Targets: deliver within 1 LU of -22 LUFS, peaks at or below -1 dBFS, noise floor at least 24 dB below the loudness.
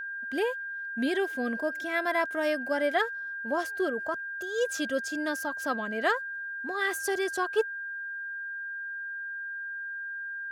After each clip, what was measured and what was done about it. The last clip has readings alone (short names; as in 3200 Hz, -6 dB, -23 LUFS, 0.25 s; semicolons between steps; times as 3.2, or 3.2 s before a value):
steady tone 1600 Hz; tone level -34 dBFS; loudness -31.0 LUFS; peak -14.0 dBFS; loudness target -22.0 LUFS
-> notch 1600 Hz, Q 30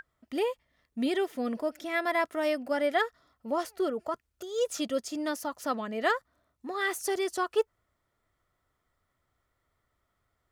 steady tone none; loudness -31.0 LUFS; peak -14.5 dBFS; loudness target -22.0 LUFS
-> gain +9 dB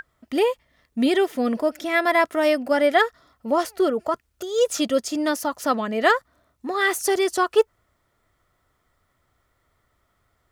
loudness -22.0 LUFS; peak -5.5 dBFS; noise floor -70 dBFS